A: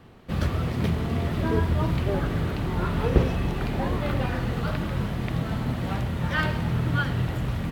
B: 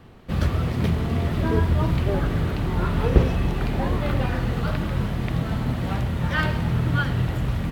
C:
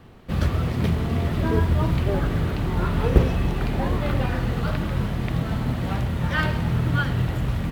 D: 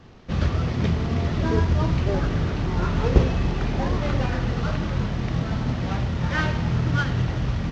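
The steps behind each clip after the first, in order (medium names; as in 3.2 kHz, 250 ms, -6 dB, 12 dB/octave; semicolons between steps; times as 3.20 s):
bass shelf 66 Hz +5.5 dB; trim +1.5 dB
companded quantiser 8-bit
CVSD coder 32 kbps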